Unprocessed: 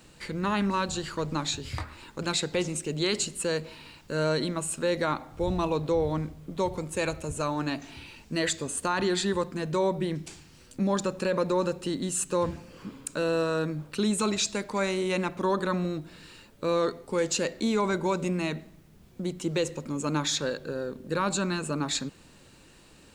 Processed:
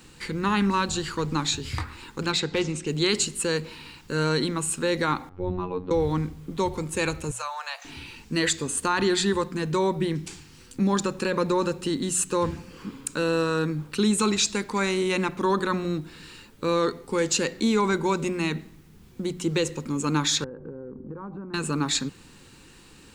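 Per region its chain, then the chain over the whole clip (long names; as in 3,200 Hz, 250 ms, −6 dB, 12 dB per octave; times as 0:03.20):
0:02.26–0:02.87: low-pass filter 5,500 Hz + hard clipping −20.5 dBFS
0:05.29–0:05.91: phases set to zero 90.7 Hz + head-to-tape spacing loss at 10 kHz 43 dB
0:07.31–0:07.85: Butterworth high-pass 520 Hz 96 dB per octave + downward compressor 1.5 to 1, threshold −35 dBFS
0:20.44–0:21.54: Bessel low-pass filter 750 Hz, order 4 + downward compressor 12 to 1, threshold −36 dBFS
whole clip: parametric band 620 Hz −14.5 dB 0.28 octaves; mains-hum notches 60/120/180 Hz; level +4.5 dB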